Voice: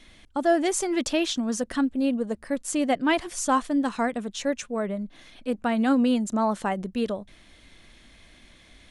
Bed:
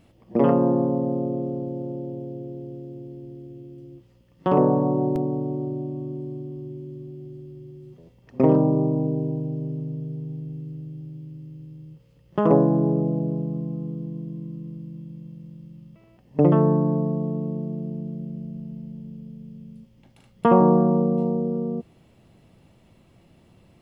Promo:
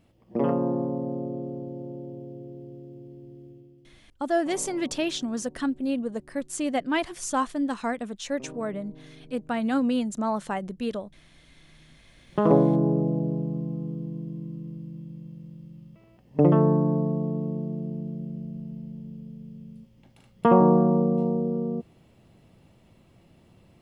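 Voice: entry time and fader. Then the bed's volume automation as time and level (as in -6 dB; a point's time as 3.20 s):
3.85 s, -3.0 dB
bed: 3.49 s -6 dB
4.28 s -25 dB
11.52 s -25 dB
12.36 s -1.5 dB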